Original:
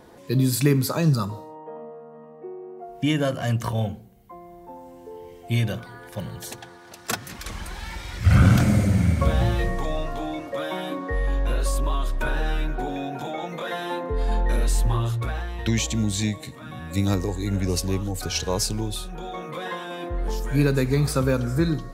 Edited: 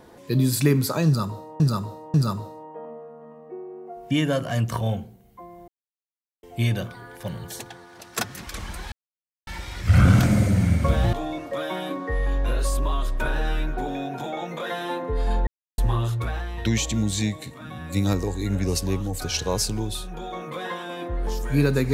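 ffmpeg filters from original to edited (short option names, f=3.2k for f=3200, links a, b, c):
-filter_complex "[0:a]asplit=9[a][b][c][d][e][f][g][h][i];[a]atrim=end=1.602[j];[b]atrim=start=1.058:end=1.602[k];[c]atrim=start=1.058:end=4.6,asetpts=PTS-STARTPTS,afade=t=out:st=3.538:d=0.004:c=hsin[l];[d]atrim=start=4.6:end=5.35,asetpts=PTS-STARTPTS,volume=0[m];[e]atrim=start=5.35:end=7.84,asetpts=PTS-STARTPTS,afade=t=in:d=0.004:c=hsin,afade=t=out:st=2.486:d=0.004:c=hsin,apad=pad_dur=0.55[n];[f]atrim=start=7.84:end=9.502,asetpts=PTS-STARTPTS,afade=t=in:d=0.004:c=hsin[o];[g]atrim=start=10.138:end=14.48,asetpts=PTS-STARTPTS,afade=t=out:st=4.338:d=0.004:c=hsin[p];[h]atrim=start=14.48:end=14.79,asetpts=PTS-STARTPTS,volume=0[q];[i]atrim=start=14.79,asetpts=PTS-STARTPTS,afade=t=in:d=0.004:c=hsin[r];[j][k]acrossfade=d=0.004:c1=hsin:c2=hsin[s];[l][m][n][o]concat=n=4:v=0:a=1[t];[s][t]acrossfade=d=0.004:c1=hsin:c2=hsin[u];[p][q][r]concat=n=3:v=0:a=1[v];[u][v]acrossfade=d=0.004:c1=hsin:c2=hsin"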